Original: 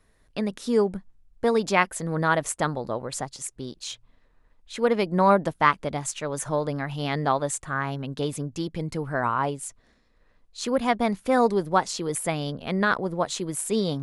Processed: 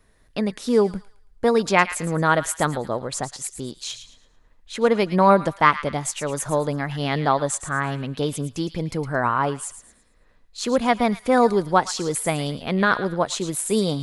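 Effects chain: wow and flutter 26 cents; on a send: thin delay 0.111 s, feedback 32%, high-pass 1600 Hz, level -10.5 dB; on the sum: gain +3.5 dB

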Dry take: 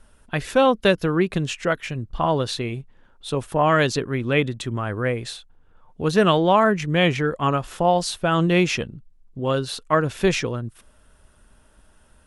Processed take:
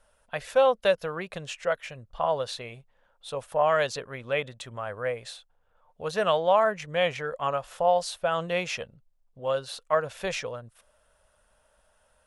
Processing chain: resonant low shelf 430 Hz -8 dB, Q 3; gain -7.5 dB

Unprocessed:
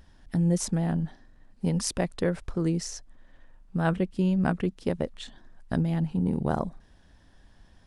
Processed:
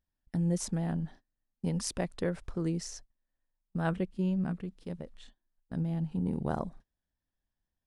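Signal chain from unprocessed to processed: gate -43 dBFS, range -26 dB; 4.05–6.12 harmonic-percussive split percussive -10 dB; gain -5.5 dB

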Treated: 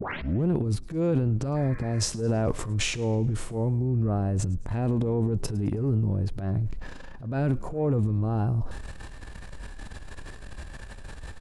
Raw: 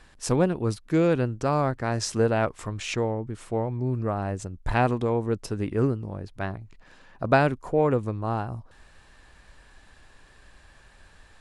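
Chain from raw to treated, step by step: tape start at the beginning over 0.49 s; tilt shelf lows +5.5 dB, about 680 Hz; harmonic-percussive split harmonic +9 dB; high shelf 4600 Hz +6 dB; reverse; compressor 6:1, threshold -22 dBFS, peak gain reduction 15.5 dB; reverse; transient shaper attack -10 dB, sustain +9 dB; spectral repair 1.58–2.02, 1000–2500 Hz after; on a send: frequency-shifting echo 0.107 s, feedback 51%, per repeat -61 Hz, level -22 dB

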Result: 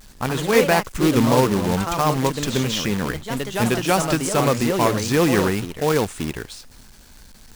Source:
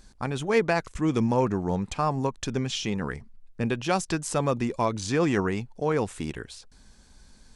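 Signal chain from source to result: companded quantiser 4-bit; echoes that change speed 97 ms, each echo +2 st, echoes 2, each echo -6 dB; gain +5.5 dB

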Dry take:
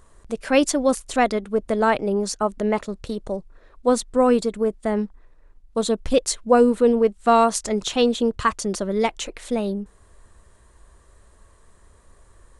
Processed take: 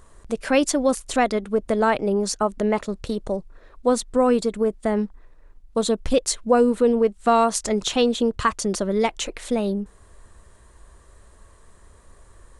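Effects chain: compressor 1.5:1, threshold -23 dBFS, peak gain reduction 5 dB; gain +2.5 dB

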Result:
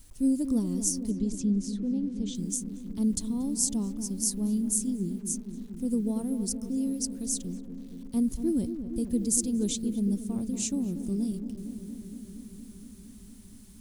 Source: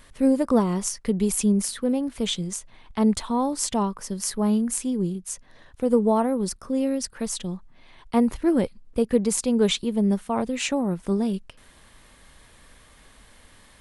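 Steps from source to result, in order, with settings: EQ curve 120 Hz 0 dB, 170 Hz -7 dB, 300 Hz -4 dB, 480 Hz -18 dB, 980 Hz -26 dB, 2100 Hz -25 dB, 6300 Hz +1 dB; bit-crush 10-bit; 1.11–2.35 air absorption 140 m; on a send: darkening echo 0.233 s, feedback 83%, low-pass 980 Hz, level -9.5 dB

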